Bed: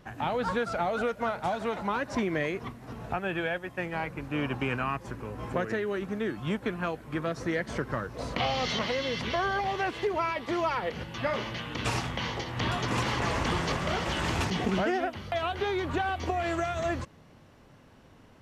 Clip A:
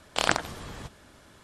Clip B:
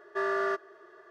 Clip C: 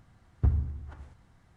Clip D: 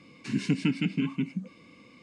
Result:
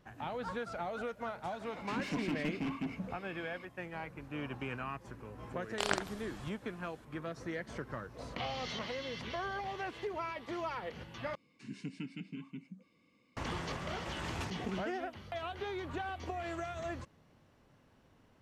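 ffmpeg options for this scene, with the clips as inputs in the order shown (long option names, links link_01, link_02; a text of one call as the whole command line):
ffmpeg -i bed.wav -i cue0.wav -i cue1.wav -i cue2.wav -i cue3.wav -filter_complex "[4:a]asplit=2[link_01][link_02];[0:a]volume=-10dB[link_03];[link_01]asplit=2[link_04][link_05];[link_05]highpass=frequency=720:poles=1,volume=28dB,asoftclip=type=tanh:threshold=-13.5dB[link_06];[link_04][link_06]amix=inputs=2:normalize=0,lowpass=frequency=1400:poles=1,volume=-6dB[link_07];[link_03]asplit=2[link_08][link_09];[link_08]atrim=end=11.354[link_10];[link_02]atrim=end=2.02,asetpts=PTS-STARTPTS,volume=-16.5dB[link_11];[link_09]atrim=start=13.366[link_12];[link_07]atrim=end=2.02,asetpts=PTS-STARTPTS,volume=-14dB,afade=type=in:duration=0.004:curve=hsin,afade=type=out:start_time=2.016:duration=0.004:curve=hsin,adelay=1630[link_13];[1:a]atrim=end=1.43,asetpts=PTS-STARTPTS,volume=-9dB,afade=type=in:duration=0.004:curve=hsin,afade=type=out:start_time=1.426:duration=0.004:curve=hsin,adelay=5620[link_14];[link_10][link_11]acrossfade=duration=0.004:curve1=hsin:curve2=hsin[link_15];[link_15][link_12]acrossfade=duration=0.004:curve1=hsin:curve2=hsin[link_16];[link_16][link_13][link_14]amix=inputs=3:normalize=0" out.wav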